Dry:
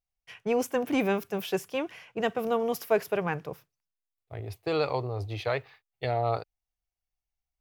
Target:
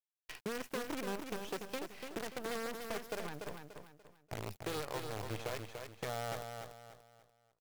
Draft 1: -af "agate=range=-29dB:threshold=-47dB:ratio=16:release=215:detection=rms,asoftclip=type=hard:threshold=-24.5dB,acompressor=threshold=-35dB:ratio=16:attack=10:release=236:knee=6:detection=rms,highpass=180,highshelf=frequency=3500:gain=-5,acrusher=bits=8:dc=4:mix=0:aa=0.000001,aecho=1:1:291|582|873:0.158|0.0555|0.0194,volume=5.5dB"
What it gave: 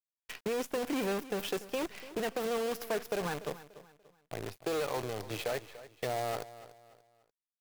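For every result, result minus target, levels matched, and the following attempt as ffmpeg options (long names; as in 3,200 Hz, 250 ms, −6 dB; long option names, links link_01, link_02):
downward compressor: peak gain reduction −8 dB; echo-to-direct −10 dB; 125 Hz band −5.0 dB
-af "agate=range=-29dB:threshold=-47dB:ratio=16:release=215:detection=rms,asoftclip=type=hard:threshold=-24.5dB,acompressor=threshold=-43.5dB:ratio=16:attack=10:release=236:knee=6:detection=rms,highpass=180,highshelf=frequency=3500:gain=-5,acrusher=bits=8:dc=4:mix=0:aa=0.000001,aecho=1:1:291|582|873:0.158|0.0555|0.0194,volume=5.5dB"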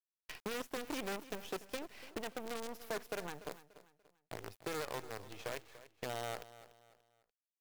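echo-to-direct −10 dB; 125 Hz band −5.5 dB
-af "agate=range=-29dB:threshold=-47dB:ratio=16:release=215:detection=rms,asoftclip=type=hard:threshold=-24.5dB,acompressor=threshold=-43.5dB:ratio=16:attack=10:release=236:knee=6:detection=rms,highpass=180,highshelf=frequency=3500:gain=-5,acrusher=bits=8:dc=4:mix=0:aa=0.000001,aecho=1:1:291|582|873|1164:0.501|0.175|0.0614|0.0215,volume=5.5dB"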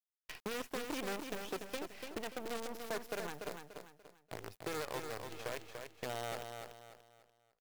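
125 Hz band −5.5 dB
-af "agate=range=-29dB:threshold=-47dB:ratio=16:release=215:detection=rms,asoftclip=type=hard:threshold=-24.5dB,acompressor=threshold=-43.5dB:ratio=16:attack=10:release=236:knee=6:detection=rms,highpass=67,highshelf=frequency=3500:gain=-5,acrusher=bits=8:dc=4:mix=0:aa=0.000001,aecho=1:1:291|582|873|1164:0.501|0.175|0.0614|0.0215,volume=5.5dB"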